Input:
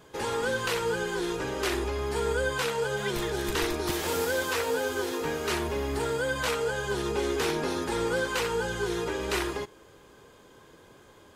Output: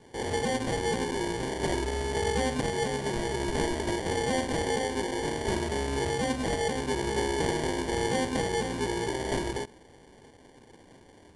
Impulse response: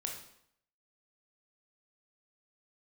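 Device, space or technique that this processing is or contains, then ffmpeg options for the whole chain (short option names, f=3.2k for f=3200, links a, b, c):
crushed at another speed: -af "asetrate=88200,aresample=44100,acrusher=samples=17:mix=1:aa=0.000001,asetrate=22050,aresample=44100"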